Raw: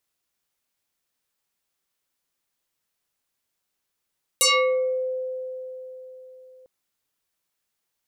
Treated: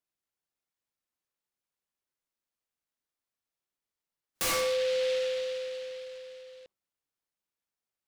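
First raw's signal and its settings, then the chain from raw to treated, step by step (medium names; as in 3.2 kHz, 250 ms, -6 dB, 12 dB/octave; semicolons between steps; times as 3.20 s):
FM tone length 2.25 s, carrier 514 Hz, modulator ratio 3.24, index 7.3, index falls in 0.61 s exponential, decay 4.05 s, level -14.5 dB
spectral noise reduction 12 dB; peak limiter -25 dBFS; delay time shaken by noise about 2.9 kHz, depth 0.085 ms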